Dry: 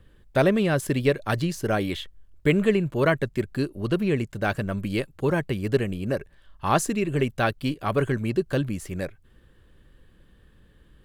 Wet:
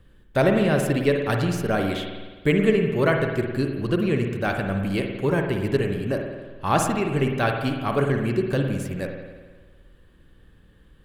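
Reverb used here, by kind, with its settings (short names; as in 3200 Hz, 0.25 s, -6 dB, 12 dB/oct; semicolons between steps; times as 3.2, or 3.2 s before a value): spring tank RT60 1.4 s, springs 51 ms, chirp 40 ms, DRR 3 dB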